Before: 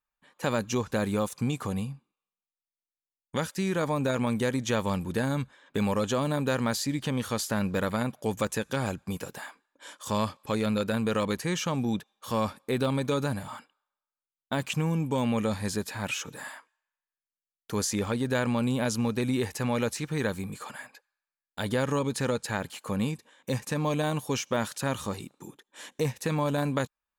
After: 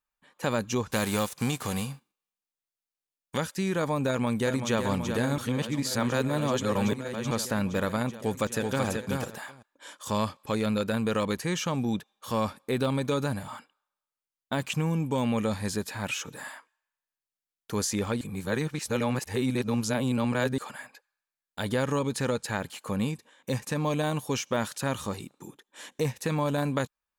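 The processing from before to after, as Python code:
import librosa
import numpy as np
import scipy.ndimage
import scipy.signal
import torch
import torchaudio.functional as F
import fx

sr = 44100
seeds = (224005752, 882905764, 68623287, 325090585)

y = fx.envelope_flatten(x, sr, power=0.6, at=(0.9, 3.36), fade=0.02)
y = fx.echo_throw(y, sr, start_s=4.08, length_s=0.71, ms=380, feedback_pct=85, wet_db=-7.0)
y = fx.echo_throw(y, sr, start_s=8.18, length_s=0.68, ms=380, feedback_pct=10, wet_db=-3.5)
y = fx.edit(y, sr, fx.reverse_span(start_s=5.38, length_s=1.93),
    fx.reverse_span(start_s=18.21, length_s=2.37), tone=tone)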